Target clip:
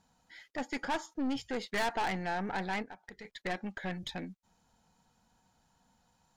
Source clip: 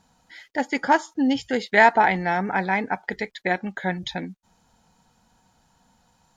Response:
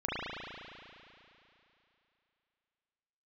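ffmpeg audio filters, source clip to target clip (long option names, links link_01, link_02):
-filter_complex "[0:a]aeval=exprs='(tanh(12.6*val(0)+0.4)-tanh(0.4))/12.6':channel_layout=same,asettb=1/sr,asplit=3[link_01][link_02][link_03];[link_01]atrim=end=2.824[link_04];[link_02]atrim=start=2.82:end=3.25,asetpts=PTS-STARTPTS,afade=type=in:duration=0.004:curve=qsin,afade=type=out:start_time=0.426:duration=0.004:curve=qsin,acompressor=threshold=-38dB:ratio=10[link_05];[link_03]atrim=start=3.246[link_06];[link_04][link_05]acrossfade=duration=0.004:curve1=hsin:curve2=qsin[link_07];[link_07][link_06]acrossfade=duration=0.004:curve1=qsin:curve2=hsin,volume=-7dB"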